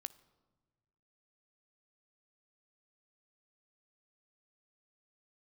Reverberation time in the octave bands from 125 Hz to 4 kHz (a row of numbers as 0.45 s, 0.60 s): 1.8 s, 1.6 s, 1.5 s, 1.3 s, 1.0 s, 0.80 s